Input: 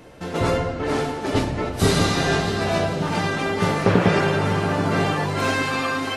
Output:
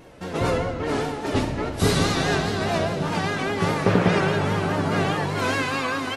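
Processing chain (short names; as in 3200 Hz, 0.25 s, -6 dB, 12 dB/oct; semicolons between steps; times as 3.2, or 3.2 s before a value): vibrato 4.9 Hz 78 cents; feedback echo 67 ms, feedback 57%, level -15 dB; gain -2 dB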